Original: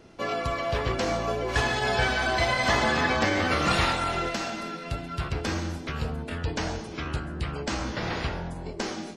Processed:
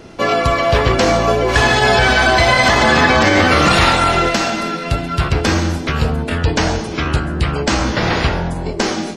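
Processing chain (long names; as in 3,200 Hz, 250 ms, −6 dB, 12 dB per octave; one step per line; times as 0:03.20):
boost into a limiter +15 dB
level −1 dB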